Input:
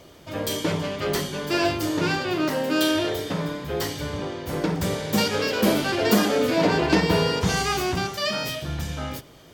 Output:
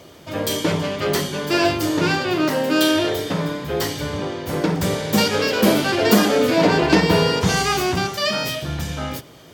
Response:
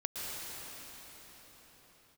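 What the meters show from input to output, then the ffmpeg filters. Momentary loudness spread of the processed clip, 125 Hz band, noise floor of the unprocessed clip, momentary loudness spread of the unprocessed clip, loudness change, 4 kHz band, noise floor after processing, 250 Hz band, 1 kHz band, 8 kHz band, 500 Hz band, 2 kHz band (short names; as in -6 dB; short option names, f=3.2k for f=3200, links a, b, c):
10 LU, +4.0 dB, -49 dBFS, 10 LU, +4.5 dB, +4.5 dB, -44 dBFS, +4.5 dB, +4.5 dB, +4.5 dB, +4.5 dB, +4.5 dB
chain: -af "highpass=72,volume=4.5dB"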